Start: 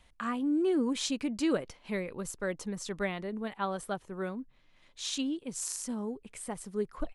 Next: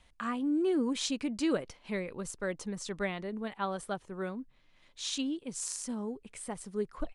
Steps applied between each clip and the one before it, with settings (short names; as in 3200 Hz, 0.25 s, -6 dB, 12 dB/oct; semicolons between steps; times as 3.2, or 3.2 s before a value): Chebyshev low-pass 10000 Hz, order 4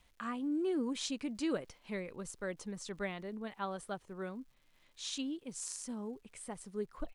crackle 330/s -57 dBFS; gain -5 dB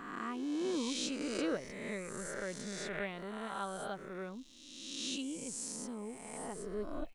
spectral swells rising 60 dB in 1.51 s; gain -3 dB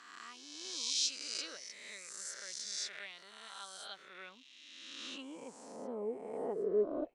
band-pass sweep 5200 Hz -> 450 Hz, 3.67–6.16; gain +10.5 dB